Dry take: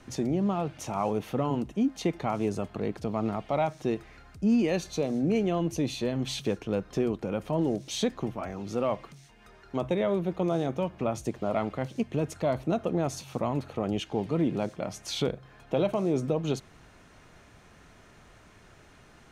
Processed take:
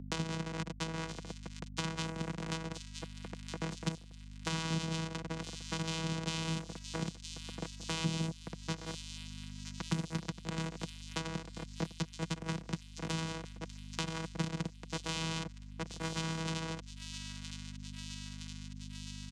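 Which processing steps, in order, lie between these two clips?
four-band scrambler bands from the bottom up 2143; formant shift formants -4 st; elliptic band-stop 210–3300 Hz, stop band 70 dB; non-linear reverb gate 0.26 s flat, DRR -1 dB; companded quantiser 2-bit; high shelf 3100 Hz -7.5 dB; compressor, threshold -36 dBFS, peak gain reduction 8 dB; vocoder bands 4, saw 162 Hz; comb 4.2 ms, depth 32%; on a send: thin delay 0.966 s, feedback 65%, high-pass 3600 Hz, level -10 dB; on the sum: hum 50 Hz, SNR 13 dB; three-band squash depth 70%; gain +7.5 dB

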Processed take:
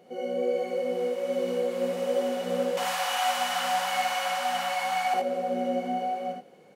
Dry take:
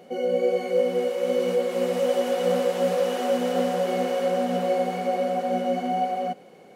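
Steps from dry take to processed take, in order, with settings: 2.77–5.14 EQ curve 120 Hz 0 dB, 410 Hz -30 dB, 780 Hz +12 dB; early reflections 57 ms -3.5 dB, 77 ms -4.5 dB; gain -7.5 dB

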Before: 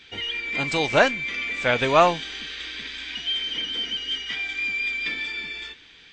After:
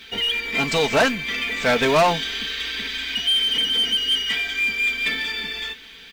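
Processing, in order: comb 4.5 ms, depth 60%; companded quantiser 6-bit; soft clip -18.5 dBFS, distortion -7 dB; gain +5.5 dB

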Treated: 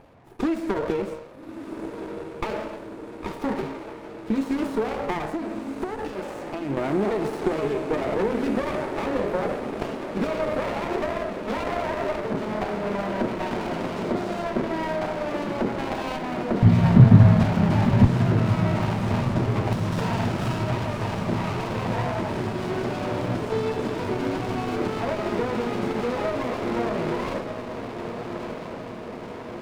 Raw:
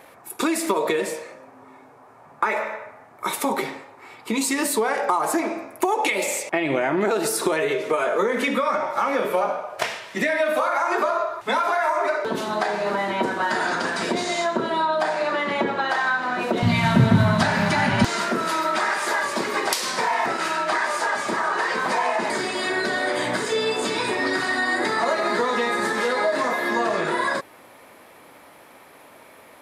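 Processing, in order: 19.92–20.69 resonant high shelf 1800 Hz +9 dB, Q 1.5; diffused feedback echo 1.275 s, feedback 68%, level -8 dB; 5.25–6.77 compressor 3:1, threshold -24 dBFS, peak gain reduction 6.5 dB; RIAA curve playback; running maximum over 17 samples; gain -5.5 dB

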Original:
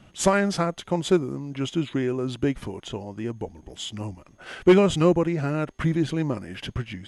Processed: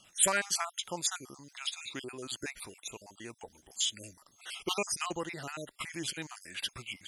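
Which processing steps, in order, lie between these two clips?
random spectral dropouts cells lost 43%; pre-emphasis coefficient 0.97; gain +9 dB

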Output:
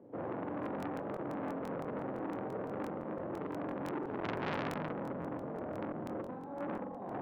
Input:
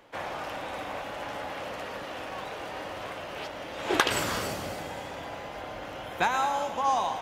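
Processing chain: negative-ratio compressor -31 dBFS, ratio -0.5; Butterworth band-pass 230 Hz, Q 0.84; on a send: flutter echo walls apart 7.6 m, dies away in 0.82 s; on the sum: crackling interface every 0.17 s, samples 1024, repeat, from 0.61; core saturation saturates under 1800 Hz; gain +5.5 dB

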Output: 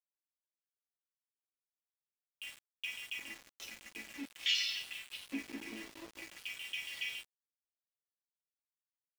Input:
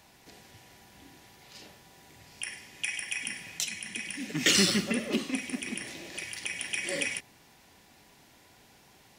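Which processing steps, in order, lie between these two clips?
dynamic EQ 2400 Hz, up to +4 dB, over -46 dBFS, Q 2.5; running mean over 5 samples; resonator bank A3 major, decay 0.29 s; LFO high-pass square 0.47 Hz 330–3100 Hz; sample gate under -53.5 dBFS; gain +7 dB

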